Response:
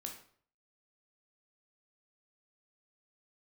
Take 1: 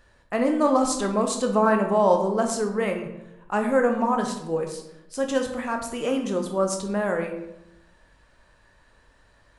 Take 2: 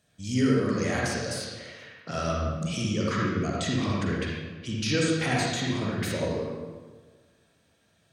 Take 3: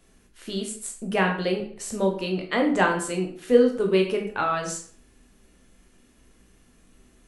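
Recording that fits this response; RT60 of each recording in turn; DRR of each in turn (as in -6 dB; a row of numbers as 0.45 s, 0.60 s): 3; 0.90 s, 1.5 s, 0.55 s; 3.5 dB, -4.0 dB, 1.5 dB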